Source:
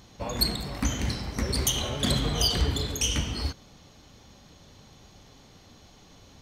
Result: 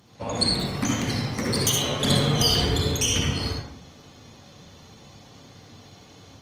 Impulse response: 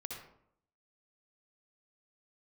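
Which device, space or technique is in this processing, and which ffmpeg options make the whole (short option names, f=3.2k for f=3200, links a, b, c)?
far-field microphone of a smart speaker: -filter_complex "[0:a]asettb=1/sr,asplit=3[a][b][c];[a]atrim=end=0.754[d];[b]atrim=start=0.75:end=2.34,asetpts=PTS-STARTPTS,afade=t=in:d=0.004:c=qsin,afade=t=out:st=1.586:d=0.004:c=qsin,highpass=f=97:w=0.5412,highpass=f=97:w=1.3066[e];[c]atrim=start=2.336[f];[d][e]acrossfade=d=0.004:c1=hsin:c2=qsin[g];[g][f]acrossfade=d=0.004:c1=qsin:c2=hsin[h];[1:a]atrim=start_sample=2205[i];[h][i]afir=irnorm=-1:irlink=0,highpass=f=83:w=0.5412,highpass=f=83:w=1.3066,dynaudnorm=f=120:g=3:m=4dB,volume=3dB" -ar 48000 -c:a libopus -b:a 24k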